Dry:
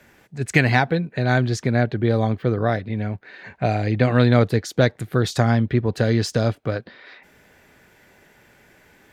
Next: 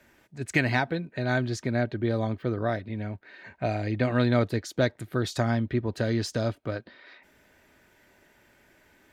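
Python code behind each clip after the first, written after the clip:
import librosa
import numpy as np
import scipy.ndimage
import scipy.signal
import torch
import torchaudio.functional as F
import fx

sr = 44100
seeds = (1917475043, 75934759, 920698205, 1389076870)

y = x + 0.31 * np.pad(x, (int(3.2 * sr / 1000.0), 0))[:len(x)]
y = F.gain(torch.from_numpy(y), -7.0).numpy()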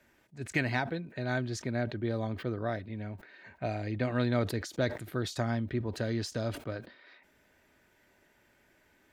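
y = fx.sustainer(x, sr, db_per_s=120.0)
y = F.gain(torch.from_numpy(y), -6.0).numpy()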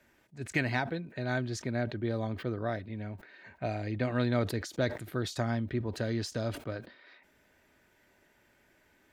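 y = x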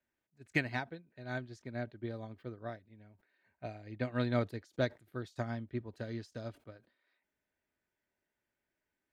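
y = fx.upward_expand(x, sr, threshold_db=-40.0, expansion=2.5)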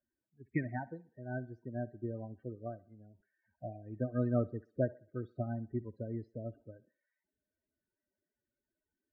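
y = fx.spec_topn(x, sr, count=16)
y = scipy.signal.sosfilt(scipy.signal.bessel(2, 1100.0, 'lowpass', norm='mag', fs=sr, output='sos'), y)
y = fx.echo_thinned(y, sr, ms=63, feedback_pct=45, hz=280.0, wet_db=-20)
y = F.gain(torch.from_numpy(y), 1.5).numpy()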